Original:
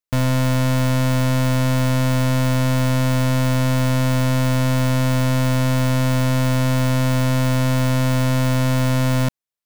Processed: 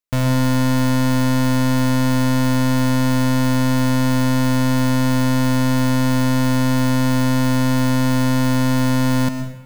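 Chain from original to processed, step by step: plate-style reverb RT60 0.97 s, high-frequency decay 0.8×, pre-delay 0.1 s, DRR 8.5 dB

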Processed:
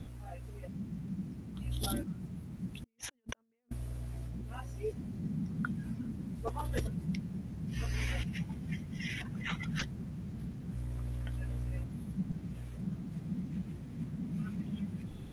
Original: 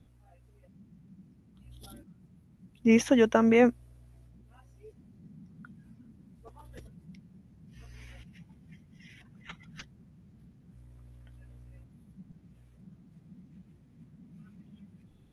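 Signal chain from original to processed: negative-ratio compressor -45 dBFS, ratio -0.5; gain +5 dB

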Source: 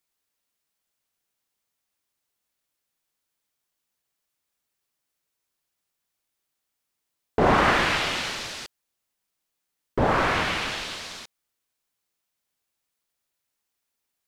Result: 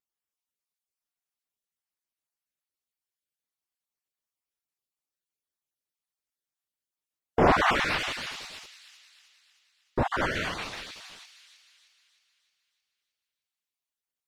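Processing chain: random spectral dropouts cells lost 29%; vibrato 9.5 Hz 86 cents; on a send: thin delay 0.31 s, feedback 52%, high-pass 2800 Hz, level -5.5 dB; on the sum: upward expander 1.5:1, over -40 dBFS

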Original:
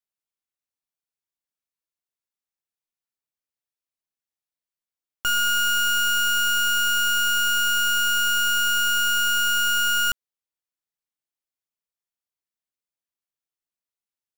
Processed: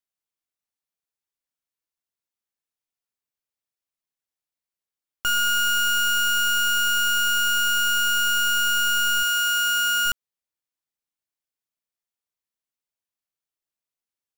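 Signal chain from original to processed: 9.22–10.05 HPF 630 Hz -> 210 Hz 6 dB/oct

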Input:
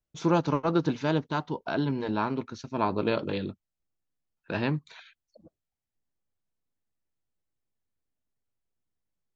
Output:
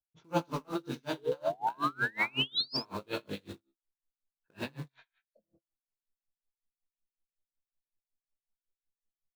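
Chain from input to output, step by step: low-pass opened by the level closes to 1100 Hz, open at -22 dBFS; high shelf 3200 Hz +11 dB; resonator 67 Hz, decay 0.29 s, harmonics all, mix 70%; chorus 0.26 Hz, delay 18 ms, depth 6.5 ms; in parallel at -5 dB: bit-crush 7-bit; on the sum: painted sound rise, 1.17–2.77, 400–5400 Hz -26 dBFS; on a send: echo 83 ms -5.5 dB; on the sum: dB-linear tremolo 5.4 Hz, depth 33 dB; gain -1.5 dB

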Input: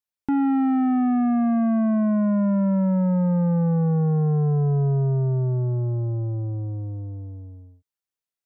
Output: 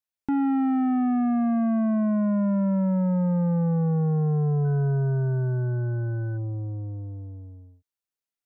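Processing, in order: 4.64–6.36 whine 1500 Hz -45 dBFS; gain -2.5 dB

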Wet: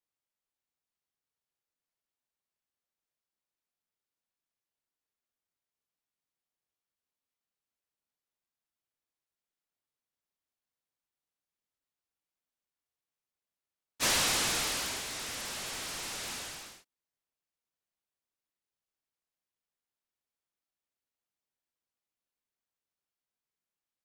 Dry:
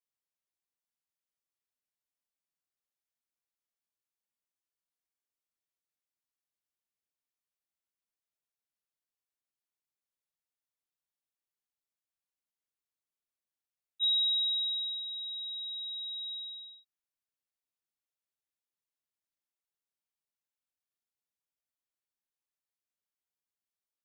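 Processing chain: noise-modulated delay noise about 1400 Hz, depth 0.098 ms

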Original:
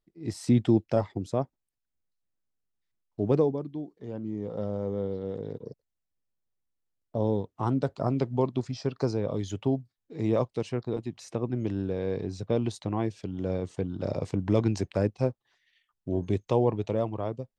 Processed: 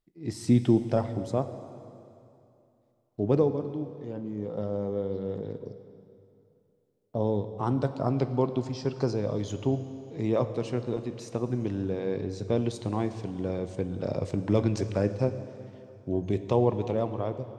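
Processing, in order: plate-style reverb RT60 2.7 s, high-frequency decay 0.9×, DRR 9.5 dB

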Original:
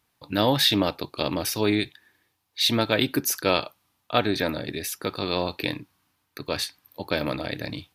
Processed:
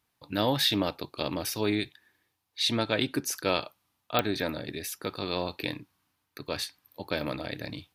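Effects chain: 2.6–3.33 LPF 11000 Hz 24 dB/oct; pops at 4.19, -4 dBFS; gain -5 dB

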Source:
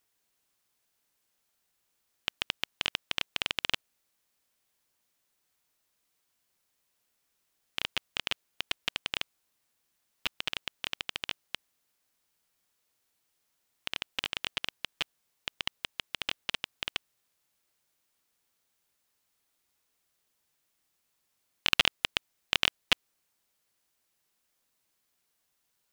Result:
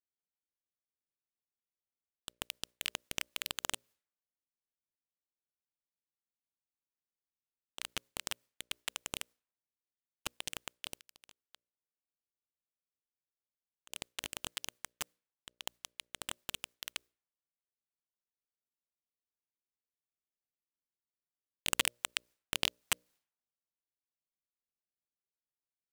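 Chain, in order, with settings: pre-emphasis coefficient 0.9; notches 60/120/180/240/300/360/420/480/540/600 Hz; low-pass opened by the level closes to 370 Hz, open at -45.5 dBFS; 10.95–13.9 compressor 8:1, threshold -58 dBFS, peak gain reduction 21.5 dB; noise-modulated delay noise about 4200 Hz, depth 0.045 ms; gain +1.5 dB

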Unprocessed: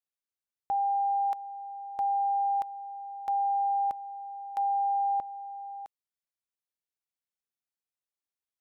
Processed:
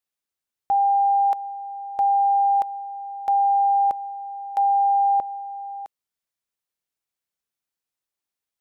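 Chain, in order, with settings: dynamic EQ 510 Hz, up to +6 dB, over -44 dBFS, Q 1; gain +5.5 dB

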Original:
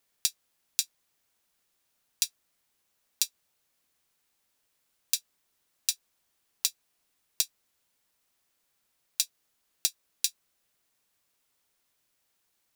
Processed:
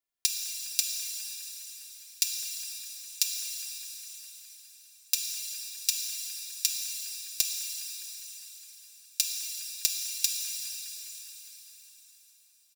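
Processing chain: comb 2.9 ms, depth 62%; level quantiser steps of 23 dB; band-limited delay 0.205 s, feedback 70%, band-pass 840 Hz, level -4.5 dB; shimmer reverb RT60 3.9 s, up +7 st, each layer -8 dB, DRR 0 dB

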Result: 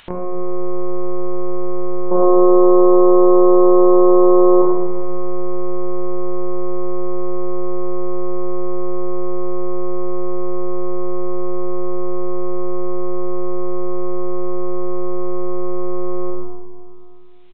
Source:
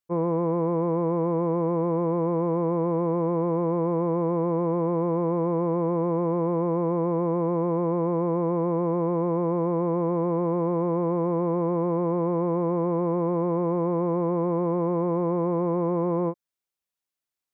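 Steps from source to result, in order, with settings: monotone LPC vocoder at 8 kHz 180 Hz; high shelf 2000 Hz +9.5 dB; echo 89 ms -10 dB; limiter -17.5 dBFS, peak gain reduction 6 dB; 2.11–4.62 band shelf 560 Hz +13.5 dB 2.9 oct; Schroeder reverb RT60 1.3 s, combs from 27 ms, DRR -3 dB; upward compressor, threshold -16 dBFS; gain -1 dB

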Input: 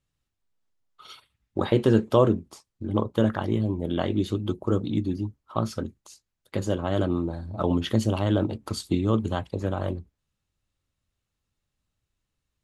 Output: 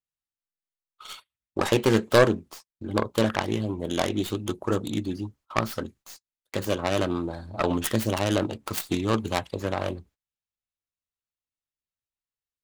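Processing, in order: tracing distortion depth 0.44 ms; gate -50 dBFS, range -20 dB; low shelf 440 Hz -11 dB; gain +5.5 dB

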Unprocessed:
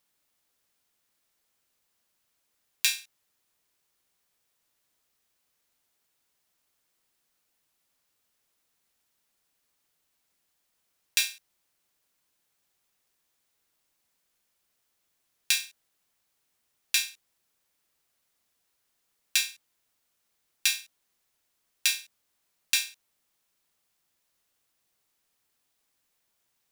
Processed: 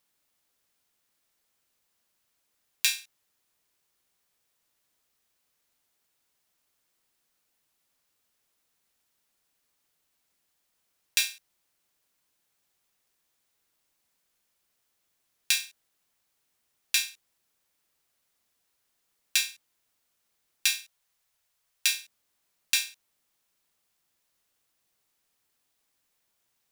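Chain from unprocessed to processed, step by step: 20.75–22.01 bell 280 Hz -13.5 dB 0.92 oct

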